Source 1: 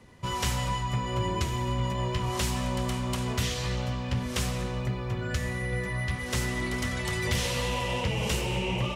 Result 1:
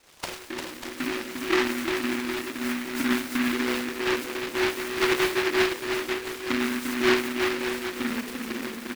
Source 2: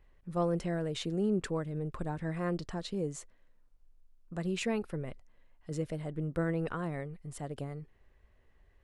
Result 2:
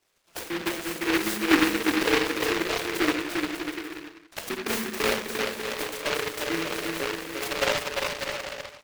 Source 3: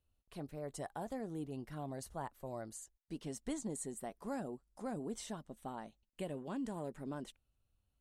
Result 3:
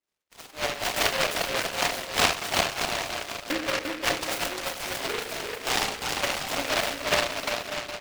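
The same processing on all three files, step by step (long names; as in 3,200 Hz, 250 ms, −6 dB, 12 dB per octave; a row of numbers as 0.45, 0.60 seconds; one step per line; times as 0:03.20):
high-pass filter 170 Hz 12 dB per octave
dynamic equaliser 220 Hz, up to +4 dB, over −45 dBFS, Q 0.81
in parallel at +2.5 dB: downward compressor 5 to 1, threshold −40 dBFS
on the sum: spectral peaks only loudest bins 64
envelope filter 220–1,400 Hz, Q 12, down, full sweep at −23.5 dBFS
decimation without filtering 14×
auto-filter high-pass saw up 2 Hz 300–1,600 Hz
on a send: bouncing-ball delay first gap 350 ms, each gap 0.7×, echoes 5
on the sum: rectangular room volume 920 cubic metres, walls furnished, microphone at 2.8 metres
short delay modulated by noise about 1,700 Hz, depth 0.3 ms
loudness normalisation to −27 LKFS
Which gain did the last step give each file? +8.5, +12.0, +14.0 decibels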